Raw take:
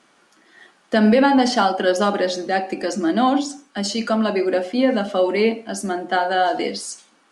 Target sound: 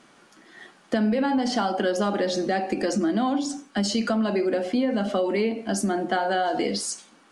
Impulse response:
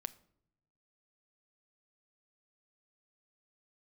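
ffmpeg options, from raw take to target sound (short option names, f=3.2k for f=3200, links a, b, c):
-filter_complex "[0:a]lowshelf=f=230:g=8.5,asplit=2[a][b];[b]alimiter=limit=-17.5dB:level=0:latency=1,volume=-3dB[c];[a][c]amix=inputs=2:normalize=0,acompressor=threshold=-17dB:ratio=6,volume=-3.5dB"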